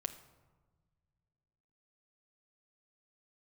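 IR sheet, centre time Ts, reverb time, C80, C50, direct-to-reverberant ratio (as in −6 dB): 9 ms, 1.3 s, 14.0 dB, 12.5 dB, 5.5 dB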